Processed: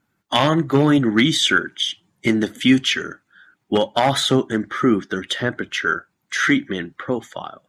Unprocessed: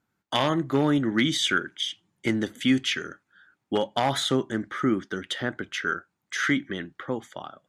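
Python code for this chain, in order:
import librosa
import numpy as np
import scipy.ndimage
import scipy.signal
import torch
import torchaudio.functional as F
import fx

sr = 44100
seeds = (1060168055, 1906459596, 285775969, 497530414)

y = fx.spec_quant(x, sr, step_db=15)
y = y * librosa.db_to_amplitude(7.5)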